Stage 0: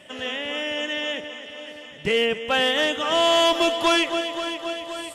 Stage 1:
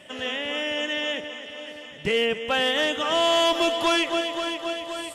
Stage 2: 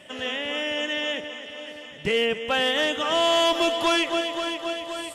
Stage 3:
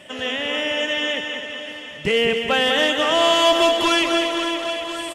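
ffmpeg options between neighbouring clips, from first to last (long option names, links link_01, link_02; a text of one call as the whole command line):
ffmpeg -i in.wav -af "alimiter=limit=-15.5dB:level=0:latency=1:release=98" out.wav
ffmpeg -i in.wav -af anull out.wav
ffmpeg -i in.wav -af "aecho=1:1:196|392|588|784|980|1176:0.473|0.232|0.114|0.0557|0.0273|0.0134,volume=4dB" out.wav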